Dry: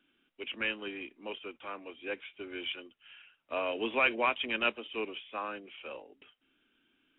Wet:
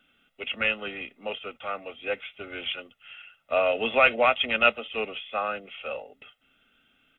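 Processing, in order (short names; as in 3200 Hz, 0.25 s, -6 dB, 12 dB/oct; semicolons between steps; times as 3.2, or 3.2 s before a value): comb 1.5 ms, depth 74%; gain +7 dB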